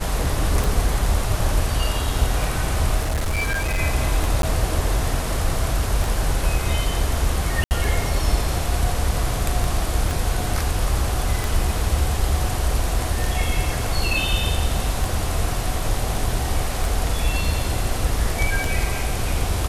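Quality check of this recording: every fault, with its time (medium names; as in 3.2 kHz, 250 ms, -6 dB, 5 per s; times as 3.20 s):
tick 33 1/3 rpm
3.00–3.79 s: clipped -18.5 dBFS
4.42–4.43 s: dropout 12 ms
7.64–7.71 s: dropout 69 ms
10.11 s: pop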